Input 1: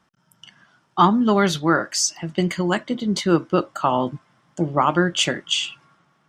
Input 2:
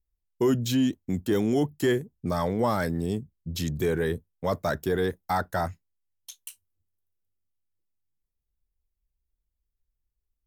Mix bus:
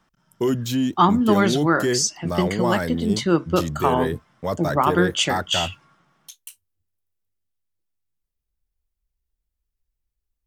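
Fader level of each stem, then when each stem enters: -1.0, +1.5 dB; 0.00, 0.00 s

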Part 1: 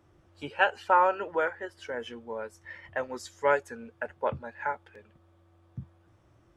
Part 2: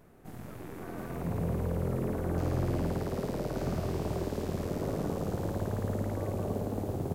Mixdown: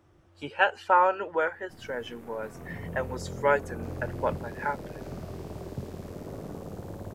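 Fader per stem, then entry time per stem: +1.0, -6.5 dB; 0.00, 1.45 s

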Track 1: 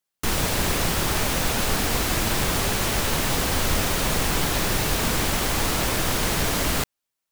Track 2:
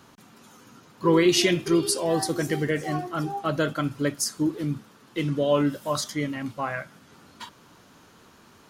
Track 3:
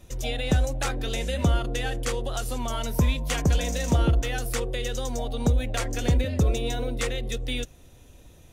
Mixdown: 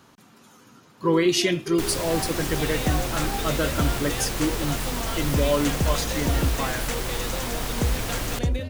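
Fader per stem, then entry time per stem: -7.0, -1.0, -2.5 dB; 1.55, 0.00, 2.35 s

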